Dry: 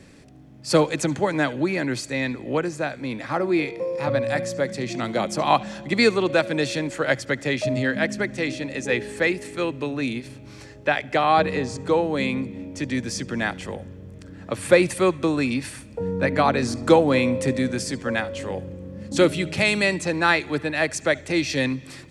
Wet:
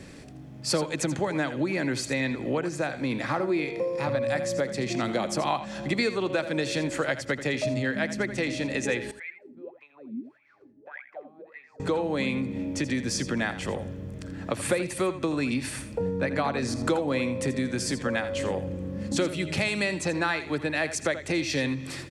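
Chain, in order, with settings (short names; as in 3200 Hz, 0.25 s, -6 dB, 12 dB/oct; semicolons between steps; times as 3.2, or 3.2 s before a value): compressor 4:1, threshold -29 dBFS, peak gain reduction 16.5 dB; 9.11–11.8 wah 1.7 Hz 220–2300 Hz, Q 16; echo 83 ms -12.5 dB; gain +3.5 dB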